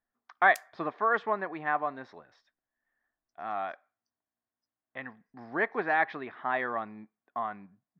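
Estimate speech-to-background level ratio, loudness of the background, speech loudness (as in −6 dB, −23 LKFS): 19.5 dB, −50.0 LKFS, −30.5 LKFS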